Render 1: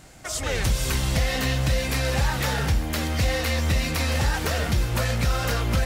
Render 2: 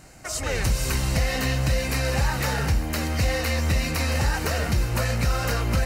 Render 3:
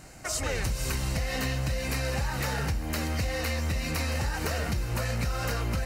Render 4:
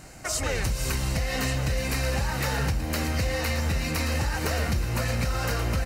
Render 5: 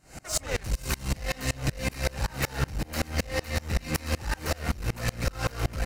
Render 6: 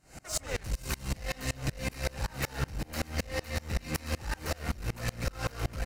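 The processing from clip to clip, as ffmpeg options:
-af "bandreject=f=3.4k:w=5.2"
-af "acompressor=threshold=-26dB:ratio=6"
-af "aecho=1:1:1132:0.316,volume=2.5dB"
-filter_complex "[0:a]asplit=2[a][b];[b]alimiter=level_in=0.5dB:limit=-24dB:level=0:latency=1,volume=-0.5dB,volume=0dB[c];[a][c]amix=inputs=2:normalize=0,aeval=exprs='clip(val(0),-1,0.0631)':c=same,aeval=exprs='val(0)*pow(10,-29*if(lt(mod(-5.3*n/s,1),2*abs(-5.3)/1000),1-mod(-5.3*n/s,1)/(2*abs(-5.3)/1000),(mod(-5.3*n/s,1)-2*abs(-5.3)/1000)/(1-2*abs(-5.3)/1000))/20)':c=same,volume=2.5dB"
-af "aecho=1:1:146:0.0794,volume=-4.5dB"

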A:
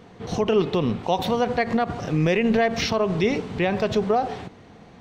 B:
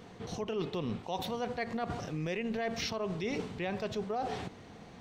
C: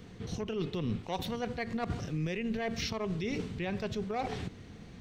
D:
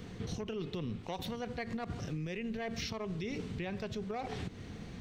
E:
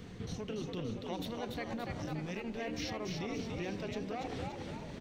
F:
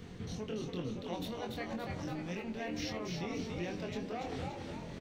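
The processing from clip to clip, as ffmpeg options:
-af "highshelf=f=4k:g=6,areverse,acompressor=threshold=-29dB:ratio=5,areverse,volume=-4dB"
-filter_complex "[0:a]lowshelf=f=120:g=10,acrossover=split=580|1100[a][b][c];[b]acrusher=bits=5:mix=0:aa=0.5[d];[a][d][c]amix=inputs=3:normalize=0"
-af "acompressor=threshold=-39dB:ratio=6,volume=3.5dB"
-filter_complex "[0:a]asplit=8[a][b][c][d][e][f][g][h];[b]adelay=287,afreqshift=72,volume=-4dB[i];[c]adelay=574,afreqshift=144,volume=-9.7dB[j];[d]adelay=861,afreqshift=216,volume=-15.4dB[k];[e]adelay=1148,afreqshift=288,volume=-21dB[l];[f]adelay=1435,afreqshift=360,volume=-26.7dB[m];[g]adelay=1722,afreqshift=432,volume=-32.4dB[n];[h]adelay=2009,afreqshift=504,volume=-38.1dB[o];[a][i][j][k][l][m][n][o]amix=inputs=8:normalize=0,volume=-2dB"
-filter_complex "[0:a]asplit=2[a][b];[b]adelay=23,volume=-4.5dB[c];[a][c]amix=inputs=2:normalize=0,volume=-1.5dB"

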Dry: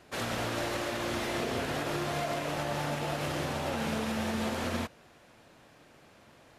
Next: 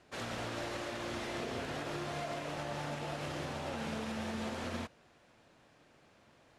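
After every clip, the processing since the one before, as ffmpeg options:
-af "lowpass=9.1k,volume=-6.5dB"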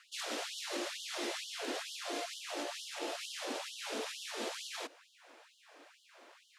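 -filter_complex "[0:a]acrossover=split=430|3000[a][b][c];[b]acompressor=threshold=-50dB:ratio=6[d];[a][d][c]amix=inputs=3:normalize=0,afftfilt=real='re*gte(b*sr/1024,240*pow(2900/240,0.5+0.5*sin(2*PI*2.2*pts/sr)))':imag='im*gte(b*sr/1024,240*pow(2900/240,0.5+0.5*sin(2*PI*2.2*pts/sr)))':win_size=1024:overlap=0.75,volume=7.5dB"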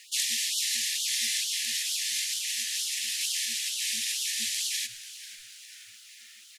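-filter_complex "[0:a]afftfilt=real='re*(1-between(b*sr/4096,240,1700))':imag='im*(1-between(b*sr/4096,240,1700))':win_size=4096:overlap=0.75,crystalizer=i=5.5:c=0,asplit=6[a][b][c][d][e][f];[b]adelay=489,afreqshift=-110,volume=-15dB[g];[c]adelay=978,afreqshift=-220,volume=-20.4dB[h];[d]adelay=1467,afreqshift=-330,volume=-25.7dB[i];[e]adelay=1956,afreqshift=-440,volume=-31.1dB[j];[f]adelay=2445,afreqshift=-550,volume=-36.4dB[k];[a][g][h][i][j][k]amix=inputs=6:normalize=0,volume=2dB"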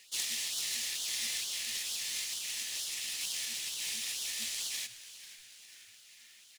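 -af "acrusher=bits=2:mode=log:mix=0:aa=0.000001,volume=-7dB"

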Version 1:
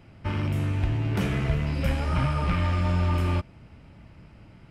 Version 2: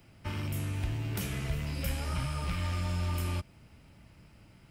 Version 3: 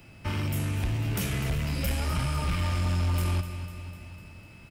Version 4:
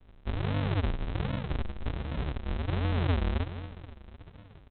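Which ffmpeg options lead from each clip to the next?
-filter_complex "[0:a]aemphasis=mode=production:type=75fm,acrossover=split=130|3000[a][b][c];[b]acompressor=threshold=-30dB:ratio=6[d];[a][d][c]amix=inputs=3:normalize=0,volume=-6.5dB"
-af "aeval=exprs='val(0)+0.000631*sin(2*PI*2600*n/s)':c=same,aecho=1:1:250|500|750|1000|1250|1500:0.211|0.12|0.0687|0.0391|0.0223|0.0127,aeval=exprs='0.106*sin(PI/2*1.78*val(0)/0.106)':c=same,volume=-2.5dB"
-af "flanger=delay=18.5:depth=2.3:speed=0.49,adynamicsmooth=sensitivity=7:basefreq=2.6k,aresample=8000,acrusher=samples=39:mix=1:aa=0.000001:lfo=1:lforange=39:lforate=1.3,aresample=44100"

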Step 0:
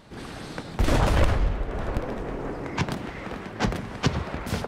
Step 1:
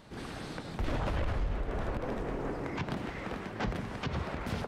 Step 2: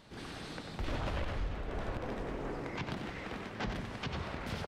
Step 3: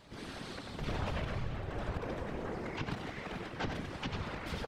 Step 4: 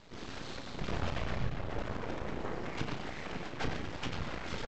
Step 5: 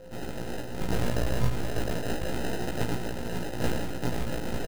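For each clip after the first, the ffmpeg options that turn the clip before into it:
-filter_complex "[0:a]acrossover=split=4300[a][b];[b]acompressor=threshold=-49dB:ratio=4:attack=1:release=60[c];[a][c]amix=inputs=2:normalize=0,alimiter=limit=-21dB:level=0:latency=1:release=73,volume=-3.5dB"
-filter_complex "[0:a]equalizer=f=3.8k:w=0.66:g=4.5,asplit=2[a][b];[b]aecho=0:1:93:0.398[c];[a][c]amix=inputs=2:normalize=0,volume=-4.5dB"
-af "afftfilt=real='hypot(re,im)*cos(2*PI*random(0))':imag='hypot(re,im)*sin(2*PI*random(1))':win_size=512:overlap=0.75,volume=6dB"
-filter_complex "[0:a]aresample=16000,aeval=exprs='max(val(0),0)':c=same,aresample=44100,asplit=2[a][b];[b]adelay=33,volume=-8.5dB[c];[a][c]amix=inputs=2:normalize=0,volume=4dB"
-filter_complex "[0:a]acrusher=samples=39:mix=1:aa=0.000001,asplit=2[a][b];[b]adelay=17,volume=-2dB[c];[a][c]amix=inputs=2:normalize=0,aeval=exprs='val(0)+0.00251*sin(2*PI*520*n/s)':c=same,volume=5.5dB"

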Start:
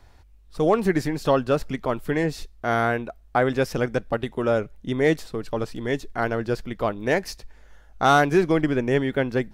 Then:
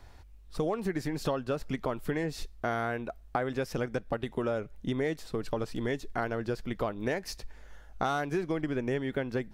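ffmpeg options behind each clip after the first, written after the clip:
-af "acompressor=threshold=-28dB:ratio=6"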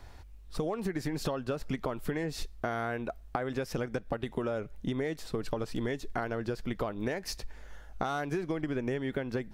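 -af "acompressor=threshold=-31dB:ratio=6,volume=2.5dB"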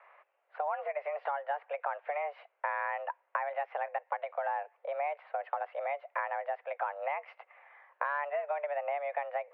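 -af "highpass=f=250:t=q:w=0.5412,highpass=f=250:t=q:w=1.307,lowpass=f=2.2k:t=q:w=0.5176,lowpass=f=2.2k:t=q:w=0.7071,lowpass=f=2.2k:t=q:w=1.932,afreqshift=290"

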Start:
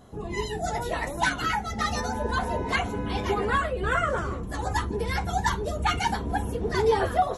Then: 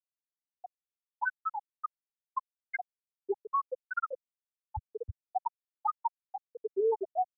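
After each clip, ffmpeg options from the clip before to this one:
-filter_complex "[0:a]afftfilt=real='re*gte(hypot(re,im),0.562)':imag='im*gte(hypot(re,im),0.562)':win_size=1024:overlap=0.75,acrossover=split=120|5200[a][b][c];[b]alimiter=limit=-22dB:level=0:latency=1:release=74[d];[a][d][c]amix=inputs=3:normalize=0"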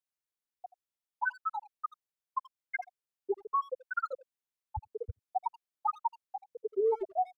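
-filter_complex "[0:a]asplit=2[a][b];[b]adelay=80,highpass=300,lowpass=3.4k,asoftclip=type=hard:threshold=-31.5dB,volume=-18dB[c];[a][c]amix=inputs=2:normalize=0"

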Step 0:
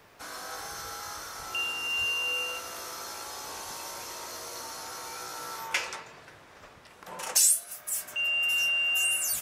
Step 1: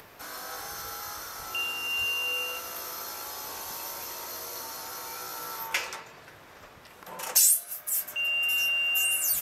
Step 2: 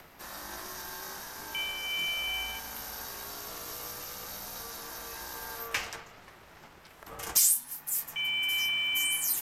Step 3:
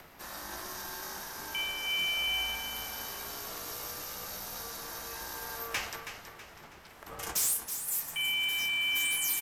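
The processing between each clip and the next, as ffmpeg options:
-af "acompressor=mode=upward:threshold=-45dB:ratio=2.5,equalizer=f=13k:w=6.3:g=15"
-af "acrusher=bits=9:mode=log:mix=0:aa=0.000001,aeval=exprs='val(0)*sin(2*PI*350*n/s)':c=same,afreqshift=-94"
-filter_complex "[0:a]asoftclip=type=hard:threshold=-25.5dB,asplit=2[a][b];[b]aecho=0:1:324|648|972|1296:0.316|0.126|0.0506|0.0202[c];[a][c]amix=inputs=2:normalize=0"

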